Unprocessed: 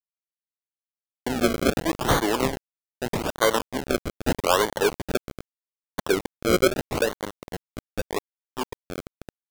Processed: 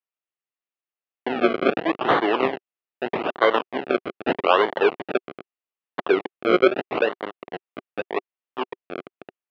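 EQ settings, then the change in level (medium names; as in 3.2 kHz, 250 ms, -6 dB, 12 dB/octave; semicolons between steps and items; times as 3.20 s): distance through air 100 m; cabinet simulation 300–3600 Hz, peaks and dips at 380 Hz +4 dB, 720 Hz +5 dB, 1.2 kHz +5 dB, 1.9 kHz +4 dB, 2.7 kHz +7 dB; bass shelf 410 Hz +4 dB; 0.0 dB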